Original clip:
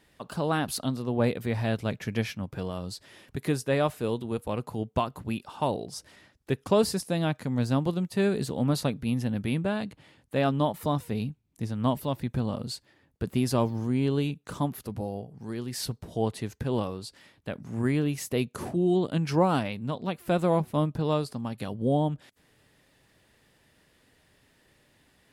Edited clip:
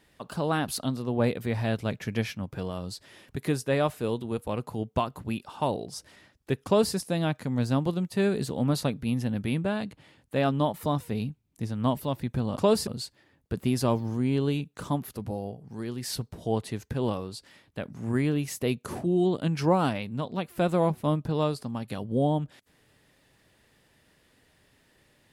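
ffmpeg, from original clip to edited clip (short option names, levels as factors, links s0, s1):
-filter_complex "[0:a]asplit=3[s0][s1][s2];[s0]atrim=end=12.572[s3];[s1]atrim=start=6.648:end=6.952[s4];[s2]atrim=start=12.568[s5];[s3][s4]acrossfade=d=0.004:c1=hsin:c2=hsin[s6];[s6][s5]acrossfade=d=0.004:c1=hsin:c2=hsin"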